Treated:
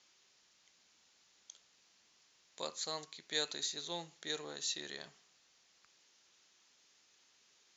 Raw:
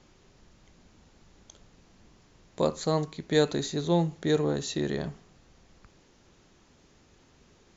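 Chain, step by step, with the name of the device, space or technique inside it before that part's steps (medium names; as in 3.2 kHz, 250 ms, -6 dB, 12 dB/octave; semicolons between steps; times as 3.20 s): piezo pickup straight into a mixer (low-pass 5.6 kHz 12 dB/octave; differentiator); trim +4.5 dB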